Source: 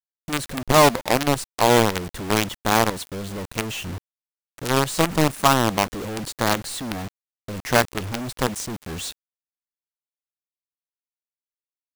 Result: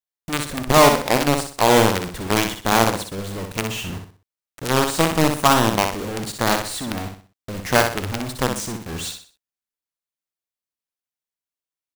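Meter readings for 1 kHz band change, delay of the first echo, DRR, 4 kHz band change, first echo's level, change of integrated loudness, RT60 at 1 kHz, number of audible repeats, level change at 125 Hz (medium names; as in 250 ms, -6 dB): +2.0 dB, 62 ms, no reverb, +2.0 dB, -6.0 dB, +2.0 dB, no reverb, 4, +1.5 dB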